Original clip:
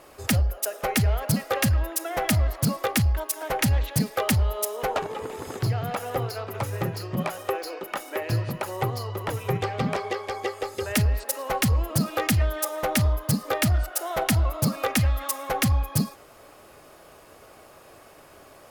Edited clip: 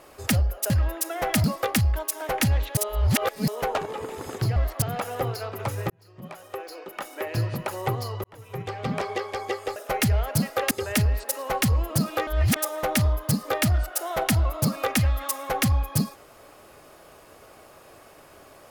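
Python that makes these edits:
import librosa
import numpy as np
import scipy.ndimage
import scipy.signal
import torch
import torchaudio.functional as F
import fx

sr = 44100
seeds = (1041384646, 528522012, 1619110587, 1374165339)

y = fx.edit(x, sr, fx.move(start_s=0.7, length_s=0.95, to_s=10.71),
    fx.move(start_s=2.39, length_s=0.26, to_s=5.77),
    fx.reverse_span(start_s=3.98, length_s=0.71),
    fx.fade_in_span(start_s=6.85, length_s=1.61),
    fx.fade_in_span(start_s=9.19, length_s=0.85),
    fx.reverse_span(start_s=12.27, length_s=0.29), tone=tone)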